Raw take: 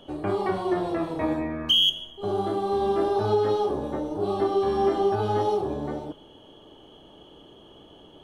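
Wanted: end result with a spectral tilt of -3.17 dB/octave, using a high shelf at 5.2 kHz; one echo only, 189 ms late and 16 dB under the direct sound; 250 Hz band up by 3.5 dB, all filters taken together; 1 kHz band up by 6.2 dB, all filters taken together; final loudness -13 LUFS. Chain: peaking EQ 250 Hz +4.5 dB; peaking EQ 1 kHz +8 dB; treble shelf 5.2 kHz +4.5 dB; delay 189 ms -16 dB; trim +8.5 dB

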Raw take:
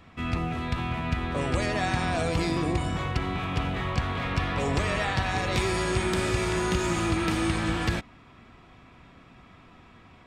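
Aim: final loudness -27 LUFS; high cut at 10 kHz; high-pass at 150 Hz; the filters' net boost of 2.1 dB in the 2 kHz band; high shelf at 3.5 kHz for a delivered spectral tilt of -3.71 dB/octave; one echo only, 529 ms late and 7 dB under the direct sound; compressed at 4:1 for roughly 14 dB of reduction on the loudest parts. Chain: high-pass 150 Hz; low-pass 10 kHz; peaking EQ 2 kHz +3.5 dB; treble shelf 3.5 kHz -3.5 dB; compression 4:1, threshold -41 dBFS; delay 529 ms -7 dB; trim +13.5 dB

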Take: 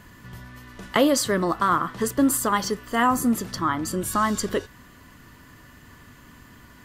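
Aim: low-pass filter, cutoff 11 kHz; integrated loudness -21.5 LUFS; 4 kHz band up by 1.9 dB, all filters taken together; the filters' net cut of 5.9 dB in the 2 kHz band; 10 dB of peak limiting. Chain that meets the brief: low-pass 11 kHz; peaking EQ 2 kHz -8.5 dB; peaking EQ 4 kHz +5 dB; trim +6.5 dB; peak limiter -11.5 dBFS

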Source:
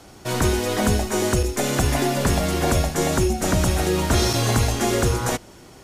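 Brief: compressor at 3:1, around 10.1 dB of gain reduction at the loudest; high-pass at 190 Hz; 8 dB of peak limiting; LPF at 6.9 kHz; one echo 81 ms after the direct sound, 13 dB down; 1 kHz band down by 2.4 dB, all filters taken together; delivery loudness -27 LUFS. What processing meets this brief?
high-pass 190 Hz; low-pass 6.9 kHz; peaking EQ 1 kHz -3.5 dB; compression 3:1, threshold -33 dBFS; peak limiter -27.5 dBFS; delay 81 ms -13 dB; trim +9 dB

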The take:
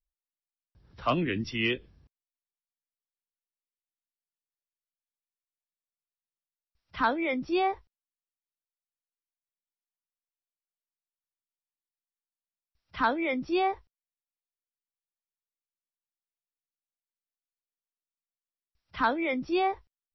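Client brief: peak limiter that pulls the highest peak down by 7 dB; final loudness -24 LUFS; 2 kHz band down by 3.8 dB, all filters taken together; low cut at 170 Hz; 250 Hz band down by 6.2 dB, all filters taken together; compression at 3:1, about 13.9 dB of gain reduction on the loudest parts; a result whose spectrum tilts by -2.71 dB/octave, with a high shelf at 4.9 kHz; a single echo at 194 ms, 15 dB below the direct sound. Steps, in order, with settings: high-pass 170 Hz; peaking EQ 250 Hz -8.5 dB; peaking EQ 2 kHz -3.5 dB; treble shelf 4.9 kHz -8 dB; compression 3:1, threshold -42 dBFS; peak limiter -34 dBFS; delay 194 ms -15 dB; trim +20.5 dB

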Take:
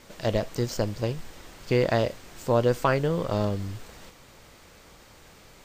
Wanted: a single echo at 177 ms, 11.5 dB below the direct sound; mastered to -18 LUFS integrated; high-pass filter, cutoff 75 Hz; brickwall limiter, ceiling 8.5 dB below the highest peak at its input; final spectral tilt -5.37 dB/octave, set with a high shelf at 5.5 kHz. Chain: high-pass 75 Hz; treble shelf 5.5 kHz +8 dB; peak limiter -16 dBFS; delay 177 ms -11.5 dB; trim +10.5 dB

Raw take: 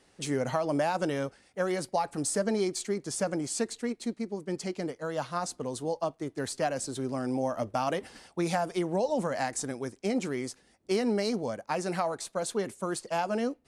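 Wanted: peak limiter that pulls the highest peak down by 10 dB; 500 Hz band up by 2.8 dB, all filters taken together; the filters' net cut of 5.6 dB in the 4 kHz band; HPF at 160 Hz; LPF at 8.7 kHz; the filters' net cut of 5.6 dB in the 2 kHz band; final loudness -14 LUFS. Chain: high-pass 160 Hz; low-pass 8.7 kHz; peaking EQ 500 Hz +4 dB; peaking EQ 2 kHz -6.5 dB; peaking EQ 4 kHz -5.5 dB; trim +20 dB; peak limiter -4 dBFS

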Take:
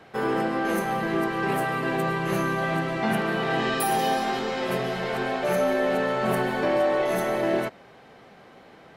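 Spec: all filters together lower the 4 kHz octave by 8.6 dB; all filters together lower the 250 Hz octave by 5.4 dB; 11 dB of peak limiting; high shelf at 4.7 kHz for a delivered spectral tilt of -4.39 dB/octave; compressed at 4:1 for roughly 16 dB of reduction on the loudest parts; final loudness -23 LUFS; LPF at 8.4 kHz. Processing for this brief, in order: low-pass 8.4 kHz; peaking EQ 250 Hz -8 dB; peaking EQ 4 kHz -8.5 dB; treble shelf 4.7 kHz -8 dB; compression 4:1, threshold -42 dBFS; trim +26 dB; peak limiter -15 dBFS

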